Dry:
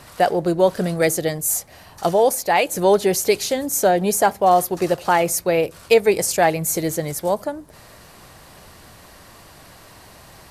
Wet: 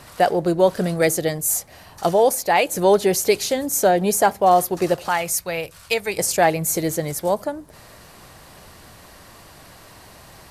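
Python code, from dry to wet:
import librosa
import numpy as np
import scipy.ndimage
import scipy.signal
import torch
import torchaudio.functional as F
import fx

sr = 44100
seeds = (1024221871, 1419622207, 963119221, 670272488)

y = fx.peak_eq(x, sr, hz=340.0, db=-12.5, octaves=2.1, at=(5.08, 6.18))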